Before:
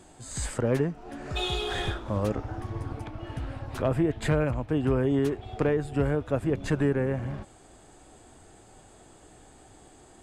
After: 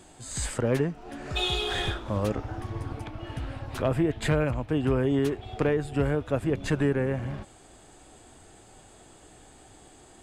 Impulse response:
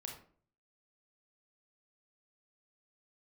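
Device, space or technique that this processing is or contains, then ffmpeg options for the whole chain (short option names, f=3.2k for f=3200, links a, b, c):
presence and air boost: -af "equalizer=f=3.1k:t=o:w=1.5:g=3.5,highshelf=f=9.1k:g=4"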